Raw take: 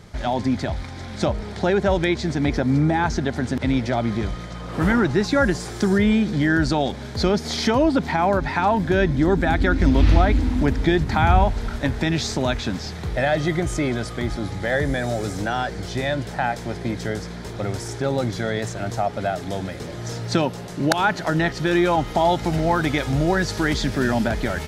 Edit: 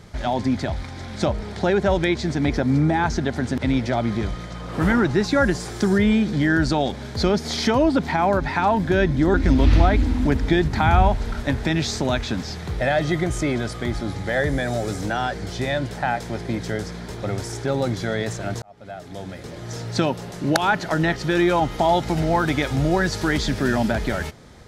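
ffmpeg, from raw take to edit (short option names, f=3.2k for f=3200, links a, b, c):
-filter_complex "[0:a]asplit=3[a][b][c];[a]atrim=end=9.342[d];[b]atrim=start=9.698:end=18.98,asetpts=PTS-STARTPTS,afade=t=out:st=9.278:d=0.004:c=hsin[e];[c]atrim=start=18.98,asetpts=PTS-STARTPTS,afade=t=in:d=1.86:c=qsin[f];[e][f]concat=n=2:v=0:a=1[g];[d][g]acrossfade=d=0.004:c1=hsin:c2=hsin"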